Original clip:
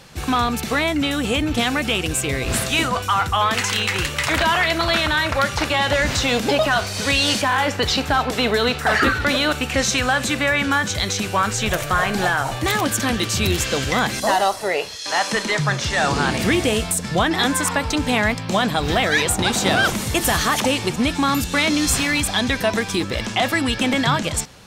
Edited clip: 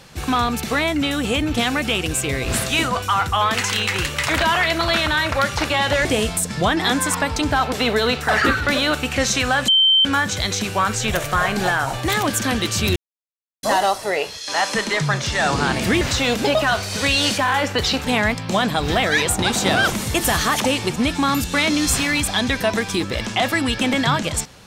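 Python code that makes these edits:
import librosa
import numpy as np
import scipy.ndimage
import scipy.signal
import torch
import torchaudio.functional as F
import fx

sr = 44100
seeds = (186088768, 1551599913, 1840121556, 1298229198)

y = fx.edit(x, sr, fx.swap(start_s=6.05, length_s=2.04, other_s=16.59, other_length_s=1.46),
    fx.bleep(start_s=10.26, length_s=0.37, hz=3110.0, db=-11.0),
    fx.silence(start_s=13.54, length_s=0.67), tone=tone)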